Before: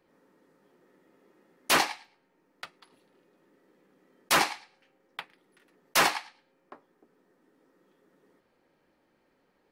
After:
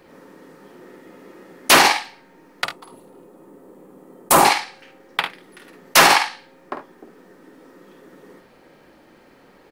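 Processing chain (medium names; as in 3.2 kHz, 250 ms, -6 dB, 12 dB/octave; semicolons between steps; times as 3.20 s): 2.64–4.45 s: high-order bell 3 kHz -12 dB 2.3 oct; early reflections 50 ms -7.5 dB, 72 ms -15 dB; loudness maximiser +21 dB; trim -2.5 dB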